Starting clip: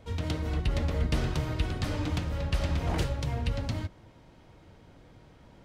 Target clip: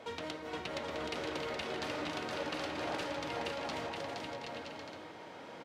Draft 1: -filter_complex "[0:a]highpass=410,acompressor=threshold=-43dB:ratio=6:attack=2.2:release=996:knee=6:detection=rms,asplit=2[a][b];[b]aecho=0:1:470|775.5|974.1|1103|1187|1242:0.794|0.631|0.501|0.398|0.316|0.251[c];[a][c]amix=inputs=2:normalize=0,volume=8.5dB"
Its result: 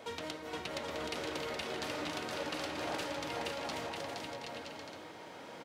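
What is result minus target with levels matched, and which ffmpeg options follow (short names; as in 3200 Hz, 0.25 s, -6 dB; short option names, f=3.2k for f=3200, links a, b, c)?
8000 Hz band +4.0 dB
-filter_complex "[0:a]highpass=410,highshelf=f=7.5k:g=-11.5,acompressor=threshold=-43dB:ratio=6:attack=2.2:release=996:knee=6:detection=rms,asplit=2[a][b];[b]aecho=0:1:470|775.5|974.1|1103|1187|1242:0.794|0.631|0.501|0.398|0.316|0.251[c];[a][c]amix=inputs=2:normalize=0,volume=8.5dB"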